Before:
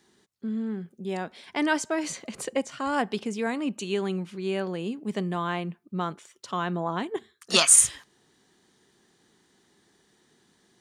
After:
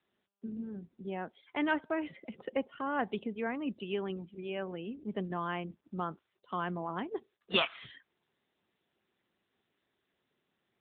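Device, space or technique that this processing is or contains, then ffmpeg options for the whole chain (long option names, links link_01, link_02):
mobile call with aggressive noise cancelling: -af "highpass=frequency=110:poles=1,afftdn=noise_reduction=22:noise_floor=-42,volume=-5dB" -ar 8000 -c:a libopencore_amrnb -b:a 10200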